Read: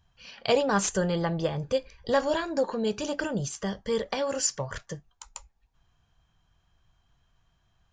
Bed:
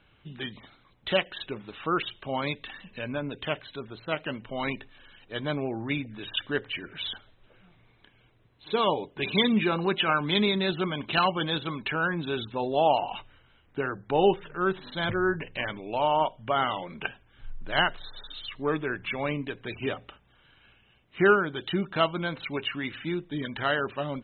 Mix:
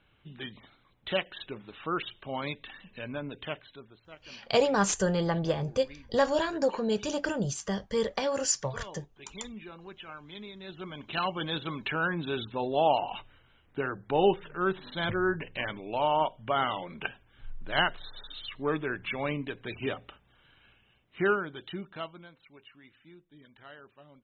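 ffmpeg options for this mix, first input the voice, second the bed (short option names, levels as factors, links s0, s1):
-filter_complex "[0:a]adelay=4050,volume=0.944[s0];[1:a]volume=4.73,afade=t=out:st=3.36:d=0.73:silence=0.16788,afade=t=in:st=10.58:d=1.23:silence=0.125893,afade=t=out:st=20.57:d=1.76:silence=0.0891251[s1];[s0][s1]amix=inputs=2:normalize=0"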